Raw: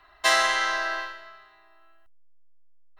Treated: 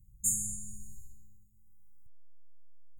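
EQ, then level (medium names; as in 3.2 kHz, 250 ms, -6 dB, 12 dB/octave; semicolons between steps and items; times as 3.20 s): brick-wall FIR band-stop 200–6500 Hz; peaking EQ 190 Hz +11.5 dB 2.3 oct; +6.5 dB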